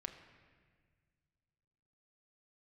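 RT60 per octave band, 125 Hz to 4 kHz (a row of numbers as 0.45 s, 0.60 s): 2.9 s, 2.3 s, 1.8 s, 1.5 s, 1.7 s, 1.4 s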